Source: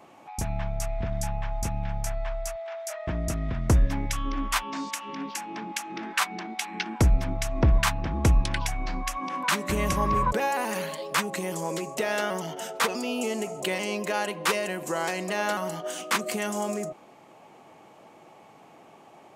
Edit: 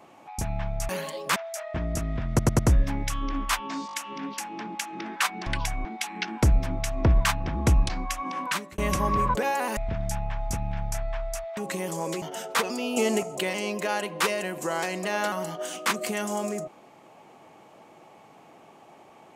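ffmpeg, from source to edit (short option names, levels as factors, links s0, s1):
-filter_complex "[0:a]asplit=18[s0][s1][s2][s3][s4][s5][s6][s7][s8][s9][s10][s11][s12][s13][s14][s15][s16][s17];[s0]atrim=end=0.892[s18];[s1]atrim=start=10.738:end=11.212[s19];[s2]atrim=start=2.688:end=3.722[s20];[s3]atrim=start=3.618:end=3.722[s21];[s4]atrim=start=3.618:end=3.722[s22];[s5]atrim=start=3.618:end=4.922[s23];[s6]atrim=start=4.898:end=4.922[s24];[s7]atrim=start=4.898:end=4.922[s25];[s8]atrim=start=4.898:end=6.432[s26];[s9]atrim=start=8.468:end=8.862[s27];[s10]atrim=start=6.428:end=8.472[s28];[s11]atrim=start=8.858:end=9.75,asetpts=PTS-STARTPTS,afade=t=out:st=0.522:d=0.37[s29];[s12]atrim=start=9.75:end=10.742,asetpts=PTS-STARTPTS,afade=t=in:d=0.004:c=hsin[s30];[s13]atrim=start=0.888:end=2.692[s31];[s14]atrim=start=11.208:end=11.862[s32];[s15]atrim=start=12.468:end=13.222[s33];[s16]atrim=start=13.218:end=13.482,asetpts=PTS-STARTPTS,volume=1.88[s34];[s17]atrim=start=13.478[s35];[s18][s19]acrossfade=d=0.004:c1=hsin:c2=hsin[s36];[s36][s20]acrossfade=d=0.004:c1=hsin:c2=hsin[s37];[s37][s21]acrossfade=d=0.004:c1=hsin:c2=hsin[s38];[s38][s22]acrossfade=d=0.004:c1=hsin:c2=hsin[s39];[s39][s23]acrossfade=d=0.004:c1=hsin:c2=hsin[s40];[s40][s24]acrossfade=d=0.004:c1=hsin:c2=hsin[s41];[s41][s25]acrossfade=d=0.004:c1=hsin:c2=hsin[s42];[s42][s26]acrossfade=d=0.004:c1=hsin:c2=hsin[s43];[s43][s27]acrossfade=d=0.004:c1=hsin:c2=hsin[s44];[s44][s28]acrossfade=d=0.004:c1=hsin:c2=hsin[s45];[s29][s30]concat=n=2:v=0:a=1[s46];[s45][s46]acrossfade=d=0.004:c1=hsin:c2=hsin[s47];[s47][s31]acrossfade=d=0.004:c1=hsin:c2=hsin[s48];[s48][s32]acrossfade=d=0.004:c1=hsin:c2=hsin[s49];[s49][s33]acrossfade=d=0.004:c1=hsin:c2=hsin[s50];[s50][s34]acrossfade=d=0.004:c1=hsin:c2=hsin[s51];[s51][s35]acrossfade=d=0.004:c1=hsin:c2=hsin"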